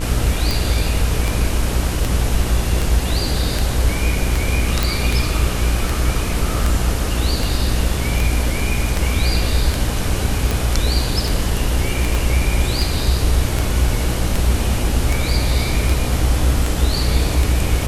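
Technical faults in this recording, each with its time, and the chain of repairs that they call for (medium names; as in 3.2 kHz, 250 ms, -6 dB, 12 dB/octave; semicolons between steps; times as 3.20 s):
buzz 60 Hz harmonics 38 -22 dBFS
tick 78 rpm
4.83 s: pop
12.15 s: pop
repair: de-click; de-hum 60 Hz, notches 38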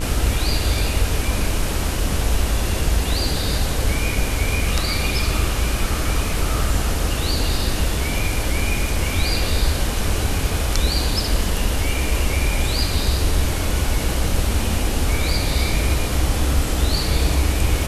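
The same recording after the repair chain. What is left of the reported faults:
12.15 s: pop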